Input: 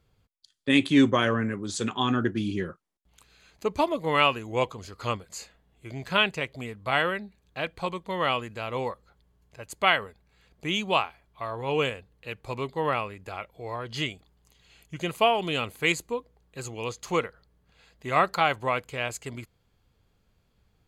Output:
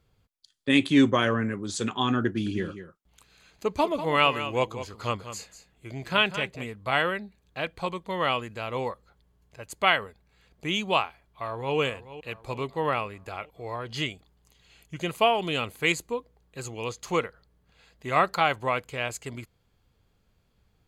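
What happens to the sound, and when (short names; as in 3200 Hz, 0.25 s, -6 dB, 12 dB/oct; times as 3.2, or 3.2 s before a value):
2.27–6.66 echo 0.194 s -11.5 dB
11.02–11.77 echo throw 0.43 s, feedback 55%, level -14.5 dB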